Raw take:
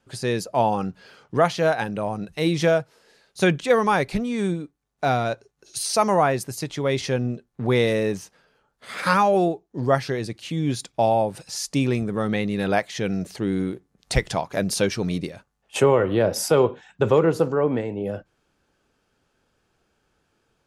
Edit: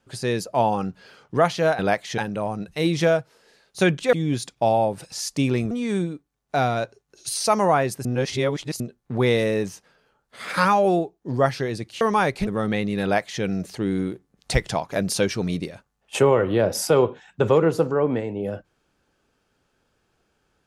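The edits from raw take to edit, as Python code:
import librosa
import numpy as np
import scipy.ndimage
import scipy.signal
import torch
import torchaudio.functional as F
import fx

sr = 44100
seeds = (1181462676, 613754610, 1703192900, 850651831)

y = fx.edit(x, sr, fx.swap(start_s=3.74, length_s=0.46, other_s=10.5, other_length_s=1.58),
    fx.reverse_span(start_s=6.54, length_s=0.75),
    fx.duplicate(start_s=12.64, length_s=0.39, to_s=1.79), tone=tone)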